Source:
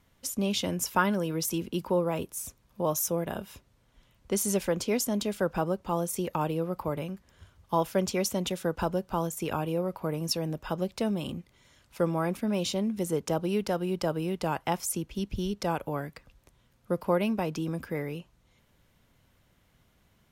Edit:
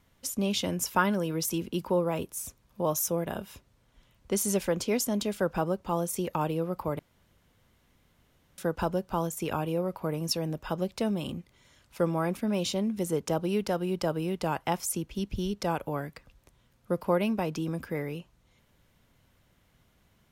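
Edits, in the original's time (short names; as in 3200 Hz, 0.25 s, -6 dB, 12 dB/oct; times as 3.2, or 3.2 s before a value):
6.99–8.58 room tone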